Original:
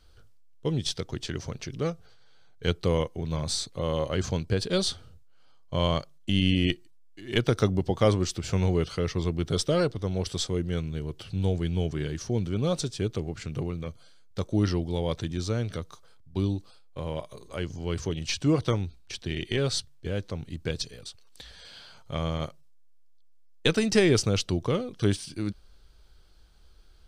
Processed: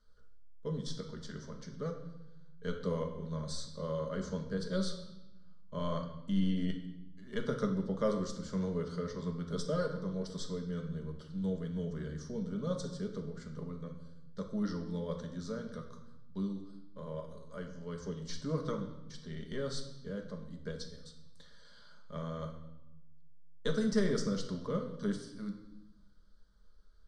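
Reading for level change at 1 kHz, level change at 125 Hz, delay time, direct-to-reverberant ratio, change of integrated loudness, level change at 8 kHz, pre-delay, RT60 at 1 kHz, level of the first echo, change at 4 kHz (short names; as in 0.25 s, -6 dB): -8.5 dB, -11.0 dB, none, 2.5 dB, -9.5 dB, -13.5 dB, 5 ms, 0.95 s, none, -15.0 dB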